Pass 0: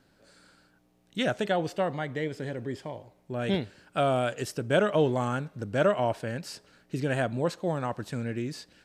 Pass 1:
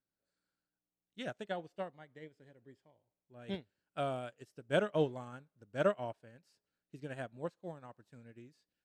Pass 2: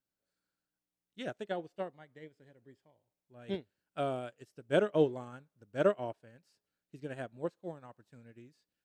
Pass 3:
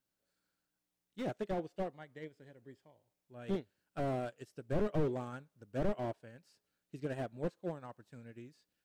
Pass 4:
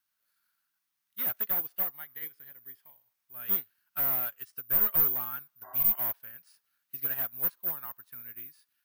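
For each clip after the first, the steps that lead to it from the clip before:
upward expansion 2.5:1, over -37 dBFS; trim -5 dB
dynamic bell 370 Hz, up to +7 dB, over -49 dBFS, Q 1.5
slew-rate limiter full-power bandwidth 8 Hz; trim +3.5 dB
careless resampling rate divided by 3×, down filtered, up zero stuff; spectral replace 5.66–5.93 s, 270–2000 Hz after; resonant low shelf 780 Hz -13.5 dB, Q 1.5; trim +4 dB

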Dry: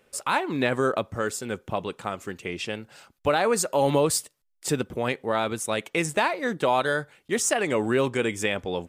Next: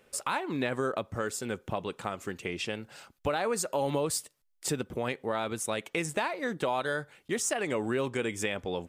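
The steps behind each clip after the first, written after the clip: compression 2:1, threshold -32 dBFS, peak gain reduction 8.5 dB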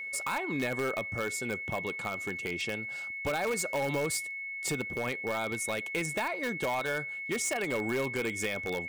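in parallel at -7.5 dB: integer overflow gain 23.5 dB; on the sum: whistle 2.2 kHz -32 dBFS; trim -4 dB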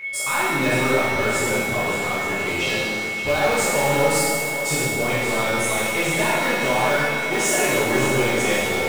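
two-band feedback delay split 390 Hz, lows 265 ms, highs 569 ms, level -10 dB; pitch-shifted reverb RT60 1.5 s, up +7 st, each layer -8 dB, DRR -9.5 dB; trim +1.5 dB

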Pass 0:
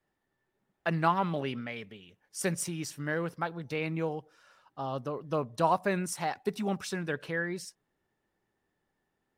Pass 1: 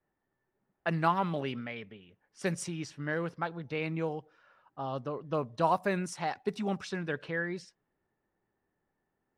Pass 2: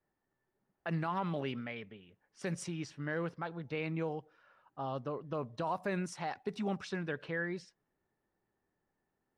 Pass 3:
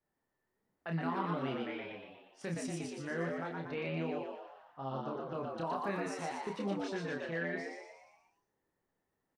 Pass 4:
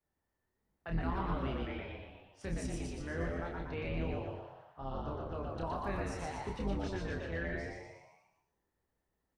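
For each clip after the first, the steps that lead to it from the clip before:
level-controlled noise filter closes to 1.9 kHz, open at -25 dBFS; trim -1 dB
treble shelf 8.3 kHz -8.5 dB; peak limiter -24 dBFS, peak gain reduction 10.5 dB; trim -2 dB
doubling 30 ms -4 dB; on a send: frequency-shifting echo 119 ms, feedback 51%, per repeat +90 Hz, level -3 dB; on the sum: trim -4 dB
octave divider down 2 oct, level +3 dB; on a send at -8 dB: reverberation RT60 0.45 s, pre-delay 108 ms; on the sum: trim -2.5 dB

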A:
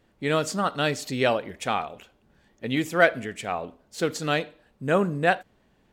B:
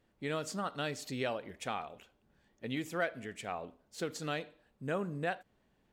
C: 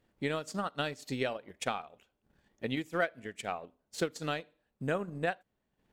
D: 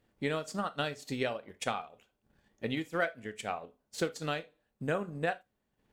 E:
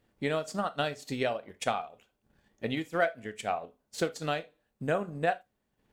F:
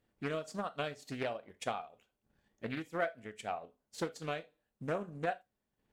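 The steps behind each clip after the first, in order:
compression 2:1, threshold -25 dBFS, peak gain reduction 7.5 dB; trim -9 dB
transient shaper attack +7 dB, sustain -9 dB
gated-style reverb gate 100 ms falling, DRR 11 dB
dynamic bell 680 Hz, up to +6 dB, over -49 dBFS, Q 3.8; trim +1.5 dB
loudspeaker Doppler distortion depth 0.32 ms; trim -7 dB

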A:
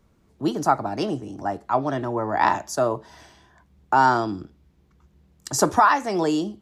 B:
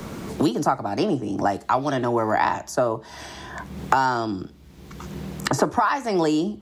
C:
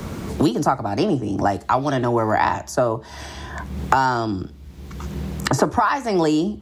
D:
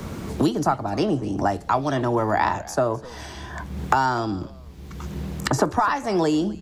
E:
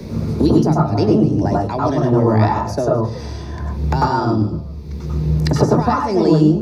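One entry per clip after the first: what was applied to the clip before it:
three bands compressed up and down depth 100%
peaking EQ 74 Hz +9 dB 1.3 oct; trim +2 dB
frequency-shifting echo 255 ms, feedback 31%, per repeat -130 Hz, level -20 dB; trim -2.5 dB
reverberation RT60 0.30 s, pre-delay 93 ms, DRR -1.5 dB; trim -5.5 dB

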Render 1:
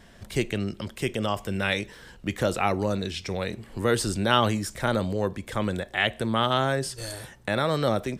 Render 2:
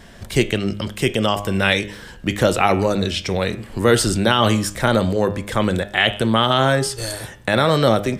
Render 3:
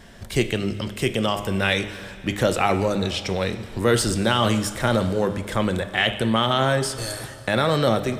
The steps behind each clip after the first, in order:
de-hum 102 Hz, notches 36; dynamic bell 3.1 kHz, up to +4 dB, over -47 dBFS, Q 6.3; loudness maximiser +10 dB; trim -1 dB
in parallel at -11.5 dB: saturation -19 dBFS, distortion -6 dB; on the sum: plate-style reverb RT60 2.7 s, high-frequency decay 0.9×, DRR 12.5 dB; trim -5 dB

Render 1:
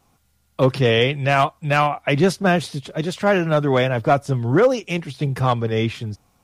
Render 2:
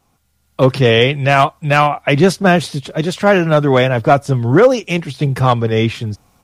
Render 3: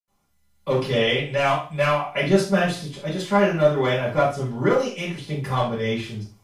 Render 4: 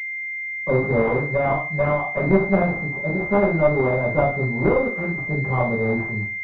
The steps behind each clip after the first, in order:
level rider
reverberation RT60 0.35 s, pre-delay 77 ms; trim -4 dB
one-sided clip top -24 dBFS, bottom -8.5 dBFS; class-D stage that switches slowly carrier 2.1 kHz; trim +4 dB

